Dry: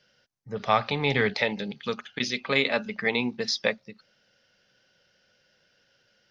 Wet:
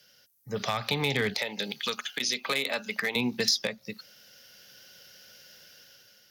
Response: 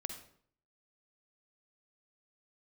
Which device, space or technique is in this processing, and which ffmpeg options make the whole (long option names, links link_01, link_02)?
FM broadcast chain: -filter_complex "[0:a]highpass=48,dynaudnorm=framelen=190:gausssize=7:maxgain=8dB,acrossover=split=170|1200[link_01][link_02][link_03];[link_01]acompressor=threshold=-34dB:ratio=4[link_04];[link_02]acompressor=threshold=-27dB:ratio=4[link_05];[link_03]acompressor=threshold=-30dB:ratio=4[link_06];[link_04][link_05][link_06]amix=inputs=3:normalize=0,aemphasis=mode=production:type=50fm,alimiter=limit=-16dB:level=0:latency=1:release=199,asoftclip=type=hard:threshold=-19dB,lowpass=frequency=15000:width=0.5412,lowpass=frequency=15000:width=1.3066,aemphasis=mode=production:type=50fm,asettb=1/sr,asplit=3[link_07][link_08][link_09];[link_07]atrim=end=1.394[link_10];[link_08]atrim=start=1.39:end=3.16,asetpts=PTS-STARTPTS,afade=type=in:duration=0.004:curve=qsin,afade=type=out:start_time=1.766:duration=0.004:curve=qsin,highpass=frequency=530:poles=1[link_11];[link_09]atrim=start=3.156[link_12];[link_10][link_11]acrossfade=duration=0.004:curve1=hsin:curve2=qsin[link_13];[link_13][link_12]acrossfade=duration=0.004:curve1=qsin:curve2=hsin,equalizer=frequency=5500:width_type=o:width=0.77:gain=-2"